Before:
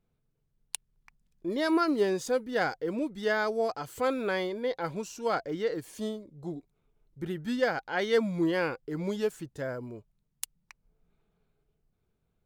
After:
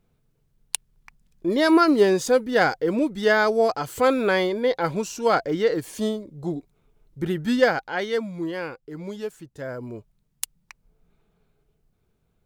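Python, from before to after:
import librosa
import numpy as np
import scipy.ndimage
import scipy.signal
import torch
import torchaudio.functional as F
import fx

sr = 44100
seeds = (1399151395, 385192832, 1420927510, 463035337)

y = fx.gain(x, sr, db=fx.line((7.63, 9.0), (8.27, -2.0), (9.47, -2.0), (9.95, 7.0)))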